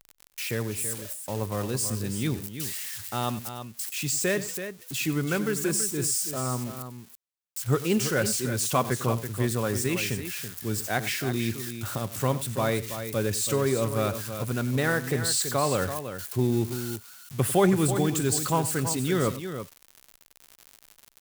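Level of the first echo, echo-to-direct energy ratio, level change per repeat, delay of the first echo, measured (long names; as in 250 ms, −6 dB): −16.0 dB, −8.5 dB, repeats not evenly spaced, 95 ms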